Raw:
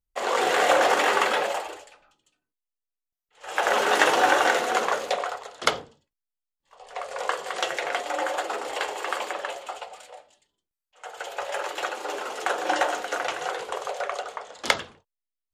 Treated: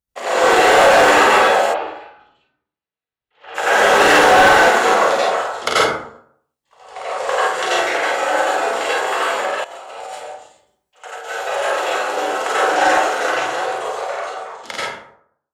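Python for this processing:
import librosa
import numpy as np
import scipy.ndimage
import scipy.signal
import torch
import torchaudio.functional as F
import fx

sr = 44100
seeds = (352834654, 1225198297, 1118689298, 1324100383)

y = fx.fade_out_tail(x, sr, length_s=2.6)
y = scipy.signal.sosfilt(scipy.signal.butter(2, 51.0, 'highpass', fs=sr, output='sos'), y)
y = fx.room_early_taps(y, sr, ms=(37, 50), db=(-7.0, -5.0))
y = fx.rev_plate(y, sr, seeds[0], rt60_s=0.63, hf_ratio=0.5, predelay_ms=75, drr_db=-8.5)
y = np.clip(y, -10.0 ** (-6.0 / 20.0), 10.0 ** (-6.0 / 20.0))
y = fx.lowpass(y, sr, hz=3800.0, slope=24, at=(1.73, 3.54), fade=0.02)
y = fx.over_compress(y, sr, threshold_db=-32.0, ratio=-1.0, at=(9.64, 11.29))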